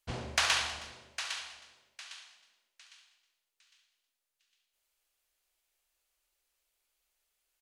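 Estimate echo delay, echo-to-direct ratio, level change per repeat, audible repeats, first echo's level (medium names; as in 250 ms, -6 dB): 69 ms, -10.5 dB, no regular repeats, 2, -11.0 dB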